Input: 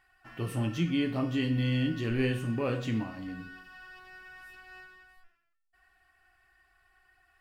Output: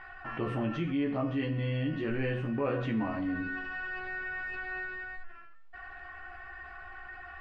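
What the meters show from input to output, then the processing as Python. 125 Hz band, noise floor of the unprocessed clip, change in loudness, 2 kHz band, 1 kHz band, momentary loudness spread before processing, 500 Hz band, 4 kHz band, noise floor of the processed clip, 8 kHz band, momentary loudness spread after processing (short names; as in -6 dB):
-3.0 dB, -75 dBFS, -2.5 dB, +5.5 dB, +5.0 dB, 20 LU, +1.0 dB, -7.0 dB, -48 dBFS, under -15 dB, 14 LU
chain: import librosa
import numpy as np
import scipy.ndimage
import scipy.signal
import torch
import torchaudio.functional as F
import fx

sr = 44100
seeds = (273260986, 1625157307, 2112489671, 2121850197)

y = scipy.signal.sosfilt(scipy.signal.butter(2, 1700.0, 'lowpass', fs=sr, output='sos'), x)
y = fx.low_shelf(y, sr, hz=320.0, db=-9.0)
y = fx.rider(y, sr, range_db=5, speed_s=0.5)
y = fx.low_shelf(y, sr, hz=76.0, db=9.0)
y = fx.hum_notches(y, sr, base_hz=60, count=2)
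y = fx.doubler(y, sr, ms=14.0, db=-4.5)
y = fx.env_flatten(y, sr, amount_pct=50)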